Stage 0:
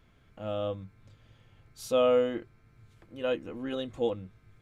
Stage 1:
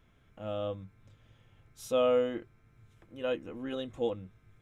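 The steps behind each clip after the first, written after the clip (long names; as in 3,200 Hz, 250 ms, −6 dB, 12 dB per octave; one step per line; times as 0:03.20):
notch filter 4,500 Hz, Q 6.1
level −2.5 dB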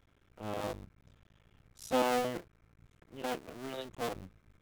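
sub-harmonics by changed cycles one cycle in 2, muted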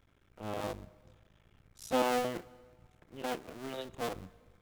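dense smooth reverb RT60 1.7 s, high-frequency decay 0.85×, DRR 19 dB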